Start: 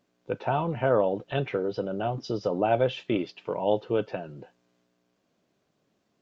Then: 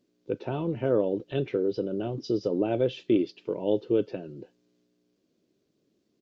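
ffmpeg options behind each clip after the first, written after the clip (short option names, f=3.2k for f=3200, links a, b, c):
-af "firequalizer=gain_entry='entry(160,0);entry(340,8);entry(740,-10);entry(1400,-8);entry(2100,-5);entry(4500,2);entry(7200,-1)':delay=0.05:min_phase=1,volume=-2dB"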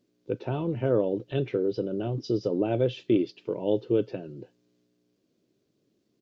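-af "equalizer=f=120:t=o:w=0.32:g=6"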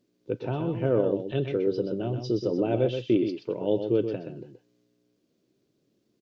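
-af "aecho=1:1:126:0.422"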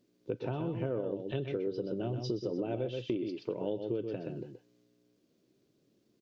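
-af "acompressor=threshold=-31dB:ratio=6"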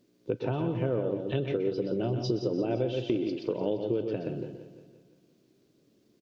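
-af "aecho=1:1:172|344|516|688|860|1032:0.237|0.128|0.0691|0.0373|0.0202|0.0109,volume=5dB"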